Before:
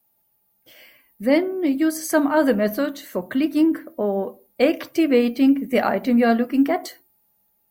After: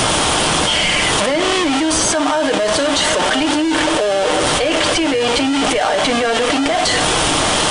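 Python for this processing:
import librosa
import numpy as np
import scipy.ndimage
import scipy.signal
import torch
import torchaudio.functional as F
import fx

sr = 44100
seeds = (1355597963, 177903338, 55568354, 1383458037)

p1 = x + 0.5 * 10.0 ** (-19.5 / 20.0) * np.sign(x)
p2 = scipy.signal.sosfilt(scipy.signal.butter(2, 620.0, 'highpass', fs=sr, output='sos'), p1)
p3 = fx.peak_eq(p2, sr, hz=3200.0, db=7.5, octaves=0.35)
p4 = p3 + 0.54 * np.pad(p3, (int(6.6 * sr / 1000.0), 0))[:len(p3)]
p5 = fx.sample_hold(p4, sr, seeds[0], rate_hz=2300.0, jitter_pct=0)
p6 = p4 + F.gain(torch.from_numpy(p5), -7.0).numpy()
p7 = fx.brickwall_lowpass(p6, sr, high_hz=10000.0)
p8 = p7 + 10.0 ** (-18.0 / 20.0) * np.pad(p7, (int(725 * sr / 1000.0), 0))[:len(p7)]
p9 = fx.env_flatten(p8, sr, amount_pct=100)
y = F.gain(torch.from_numpy(p9), -4.5).numpy()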